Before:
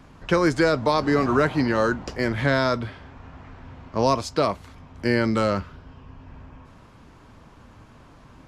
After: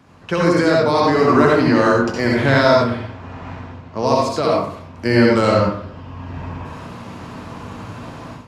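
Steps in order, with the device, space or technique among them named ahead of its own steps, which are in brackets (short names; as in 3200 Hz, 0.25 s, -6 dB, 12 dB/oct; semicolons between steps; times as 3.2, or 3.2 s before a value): far laptop microphone (reverb RT60 0.60 s, pre-delay 61 ms, DRR -3 dB; HPF 100 Hz 12 dB/oct; AGC gain up to 13.5 dB); gain -1 dB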